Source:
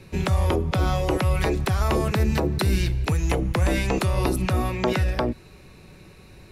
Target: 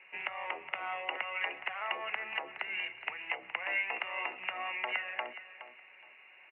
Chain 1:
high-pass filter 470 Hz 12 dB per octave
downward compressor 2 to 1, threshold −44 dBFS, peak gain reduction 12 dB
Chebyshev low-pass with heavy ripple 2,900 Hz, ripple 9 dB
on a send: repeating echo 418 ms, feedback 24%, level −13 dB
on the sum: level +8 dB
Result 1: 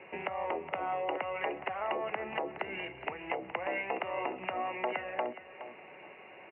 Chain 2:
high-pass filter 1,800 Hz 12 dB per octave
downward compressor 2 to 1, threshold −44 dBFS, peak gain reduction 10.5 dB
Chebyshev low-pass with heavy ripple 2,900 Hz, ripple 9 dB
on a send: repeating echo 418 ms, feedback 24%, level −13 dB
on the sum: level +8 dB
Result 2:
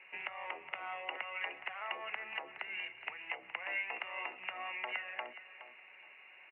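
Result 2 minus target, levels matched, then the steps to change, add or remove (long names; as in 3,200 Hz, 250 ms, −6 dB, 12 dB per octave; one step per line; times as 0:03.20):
downward compressor: peak gain reduction +5 dB
change: downward compressor 2 to 1, threshold −34.5 dBFS, peak gain reduction 5.5 dB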